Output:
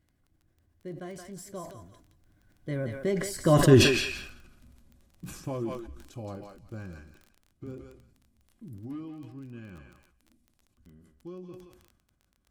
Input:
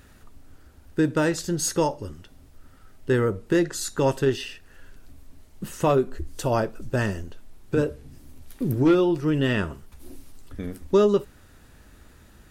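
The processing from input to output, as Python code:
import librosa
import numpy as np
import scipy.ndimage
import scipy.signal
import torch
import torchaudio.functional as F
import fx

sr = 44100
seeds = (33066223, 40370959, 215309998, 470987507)

y = fx.doppler_pass(x, sr, speed_mps=46, closest_m=8.9, pass_at_s=3.73)
y = fx.low_shelf(y, sr, hz=450.0, db=7.5)
y = fx.notch_comb(y, sr, f0_hz=450.0)
y = fx.echo_thinned(y, sr, ms=173, feedback_pct=25, hz=930.0, wet_db=-6.0)
y = fx.dmg_crackle(y, sr, seeds[0], per_s=17.0, level_db=-47.0)
y = fx.sustainer(y, sr, db_per_s=59.0)
y = y * librosa.db_to_amplitude(1.5)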